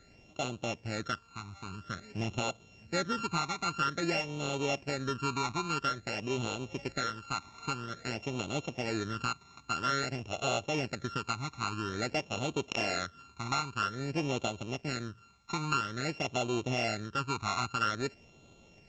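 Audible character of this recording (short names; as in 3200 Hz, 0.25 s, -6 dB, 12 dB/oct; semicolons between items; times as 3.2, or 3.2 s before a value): a buzz of ramps at a fixed pitch in blocks of 32 samples; phasing stages 12, 0.5 Hz, lowest notch 530–1700 Hz; µ-law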